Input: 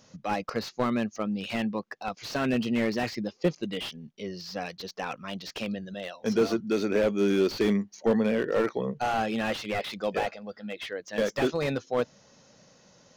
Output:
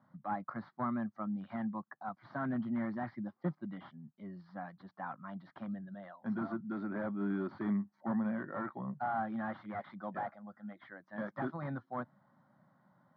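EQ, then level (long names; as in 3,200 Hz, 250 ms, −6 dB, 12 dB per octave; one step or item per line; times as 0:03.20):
high-pass filter 120 Hz 24 dB per octave
Bessel low-pass filter 1,700 Hz, order 6
phaser with its sweep stopped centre 1,100 Hz, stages 4
−4.0 dB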